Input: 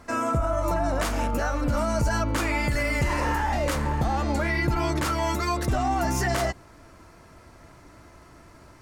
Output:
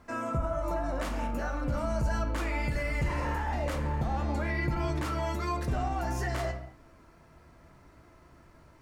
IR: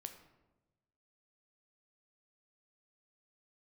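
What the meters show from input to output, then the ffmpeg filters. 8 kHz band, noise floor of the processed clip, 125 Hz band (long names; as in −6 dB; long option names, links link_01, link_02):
−12.5 dB, −57 dBFS, −4.5 dB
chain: -filter_complex "[0:a]acrusher=bits=10:mix=0:aa=0.000001,bass=frequency=250:gain=2,treble=frequency=4000:gain=-5[link_01];[1:a]atrim=start_sample=2205,afade=type=out:start_time=0.29:duration=0.01,atrim=end_sample=13230,asetrate=43659,aresample=44100[link_02];[link_01][link_02]afir=irnorm=-1:irlink=0,volume=-3dB"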